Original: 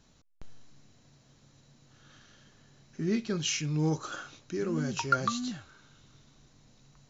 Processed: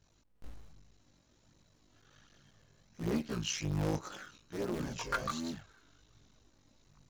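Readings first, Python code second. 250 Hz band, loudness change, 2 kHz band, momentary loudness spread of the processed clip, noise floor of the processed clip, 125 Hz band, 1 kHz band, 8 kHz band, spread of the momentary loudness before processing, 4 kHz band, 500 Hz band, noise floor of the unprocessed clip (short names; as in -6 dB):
-5.5 dB, -5.5 dB, -5.5 dB, 15 LU, -69 dBFS, -4.5 dB, -7.0 dB, n/a, 13 LU, -5.5 dB, -4.5 dB, -63 dBFS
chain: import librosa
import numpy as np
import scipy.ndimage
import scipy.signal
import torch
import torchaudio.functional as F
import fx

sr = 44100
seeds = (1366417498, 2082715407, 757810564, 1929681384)

y = fx.cycle_switch(x, sr, every=3, mode='muted')
y = fx.chorus_voices(y, sr, voices=2, hz=0.64, base_ms=19, depth_ms=2.1, mix_pct=60)
y = 10.0 ** (-22.0 / 20.0) * (np.abs((y / 10.0 ** (-22.0 / 20.0) + 3.0) % 4.0 - 2.0) - 1.0)
y = y * librosa.db_to_amplitude(-2.0)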